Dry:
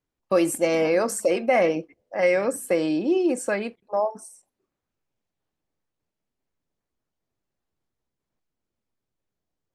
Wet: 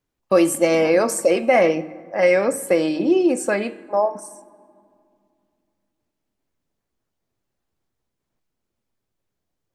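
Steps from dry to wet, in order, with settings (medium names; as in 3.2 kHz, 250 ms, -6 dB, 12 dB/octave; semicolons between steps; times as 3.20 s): de-hum 154.4 Hz, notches 30; reverberation RT60 2.4 s, pre-delay 4 ms, DRR 18 dB; trim +4.5 dB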